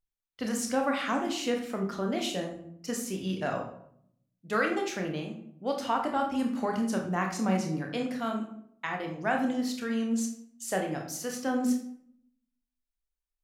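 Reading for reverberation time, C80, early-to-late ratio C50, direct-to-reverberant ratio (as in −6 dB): 0.65 s, 10.0 dB, 6.5 dB, 1.5 dB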